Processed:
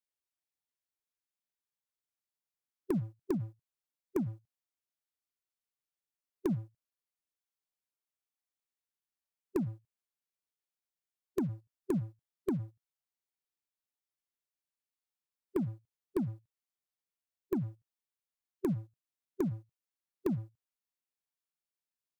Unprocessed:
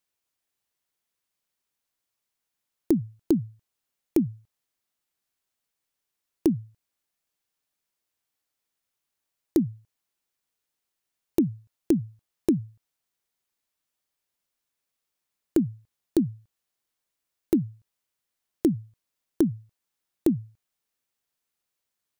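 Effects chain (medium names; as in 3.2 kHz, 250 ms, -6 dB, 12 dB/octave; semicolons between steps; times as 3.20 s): waveshaping leveller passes 2; harmonic-percussive split percussive -5 dB; formant shift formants +2 st; trim -7.5 dB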